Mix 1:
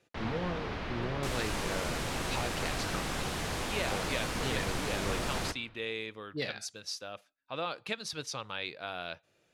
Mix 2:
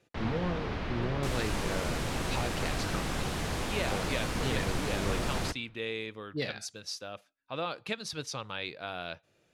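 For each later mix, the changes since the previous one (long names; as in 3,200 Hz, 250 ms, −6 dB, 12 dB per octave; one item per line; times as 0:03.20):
second sound: send −6.5 dB
master: add low-shelf EQ 360 Hz +4.5 dB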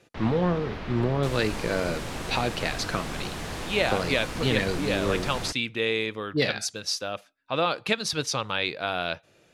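speech +10.0 dB
second sound: send −8.0 dB
master: add parametric band 71 Hz −2.5 dB 3 octaves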